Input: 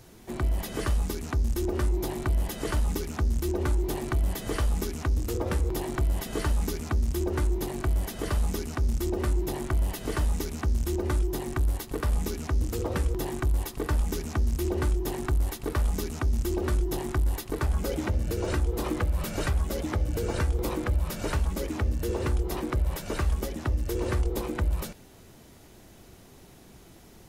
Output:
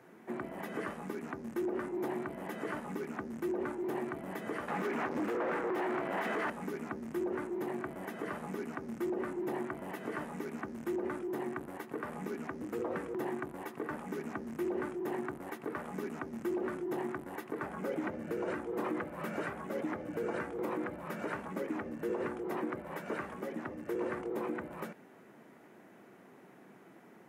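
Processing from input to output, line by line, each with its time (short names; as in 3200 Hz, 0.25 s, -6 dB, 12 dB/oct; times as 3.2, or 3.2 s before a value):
4.68–6.5 overdrive pedal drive 30 dB, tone 2500 Hz, clips at -17.5 dBFS
whole clip: HPF 180 Hz 24 dB/oct; resonant high shelf 2800 Hz -14 dB, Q 1.5; limiter -24 dBFS; gain -2.5 dB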